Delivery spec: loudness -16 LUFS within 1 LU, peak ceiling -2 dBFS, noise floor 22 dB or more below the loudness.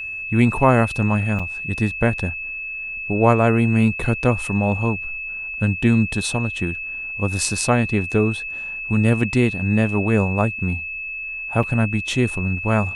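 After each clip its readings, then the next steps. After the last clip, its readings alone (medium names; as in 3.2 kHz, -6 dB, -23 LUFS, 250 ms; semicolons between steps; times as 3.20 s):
dropouts 2; longest dropout 5.1 ms; steady tone 2.6 kHz; tone level -27 dBFS; loudness -20.5 LUFS; peak level -1.5 dBFS; loudness target -16.0 LUFS
-> interpolate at 1.39/11.63 s, 5.1 ms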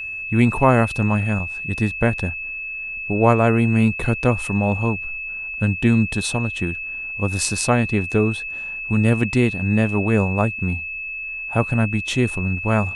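dropouts 0; steady tone 2.6 kHz; tone level -27 dBFS
-> band-stop 2.6 kHz, Q 30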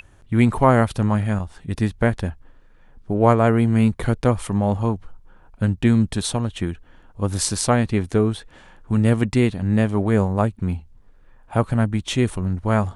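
steady tone not found; loudness -21.0 LUFS; peak level -2.0 dBFS; loudness target -16.0 LUFS
-> trim +5 dB; peak limiter -2 dBFS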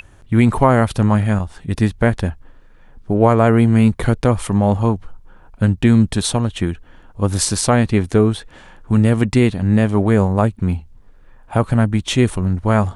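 loudness -16.5 LUFS; peak level -2.0 dBFS; noise floor -45 dBFS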